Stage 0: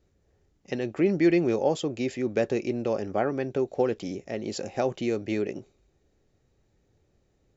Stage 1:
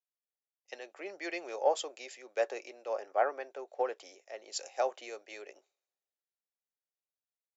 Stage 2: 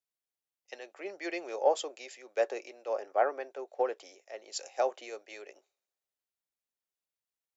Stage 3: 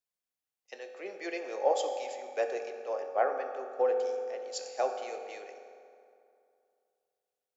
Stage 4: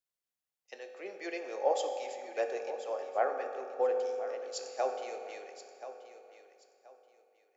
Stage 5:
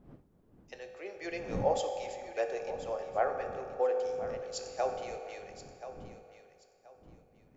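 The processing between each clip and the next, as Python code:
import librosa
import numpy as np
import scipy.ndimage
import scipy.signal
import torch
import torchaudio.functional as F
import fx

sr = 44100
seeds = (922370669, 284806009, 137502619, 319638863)

y1 = scipy.signal.sosfilt(scipy.signal.butter(4, 580.0, 'highpass', fs=sr, output='sos'), x)
y1 = fx.dynamic_eq(y1, sr, hz=3300.0, q=0.71, threshold_db=-51.0, ratio=4.0, max_db=-4)
y1 = fx.band_widen(y1, sr, depth_pct=70)
y1 = F.gain(torch.from_numpy(y1), -3.0).numpy()
y2 = fx.dynamic_eq(y1, sr, hz=310.0, q=0.71, threshold_db=-44.0, ratio=4.0, max_db=4)
y3 = fx.rev_fdn(y2, sr, rt60_s=2.5, lf_ratio=1.0, hf_ratio=0.6, size_ms=12.0, drr_db=4.5)
y3 = F.gain(torch.from_numpy(y3), -1.5).numpy()
y4 = fx.echo_feedback(y3, sr, ms=1029, feedback_pct=25, wet_db=-13)
y4 = F.gain(torch.from_numpy(y4), -2.0).numpy()
y5 = fx.dmg_wind(y4, sr, seeds[0], corner_hz=280.0, level_db=-50.0)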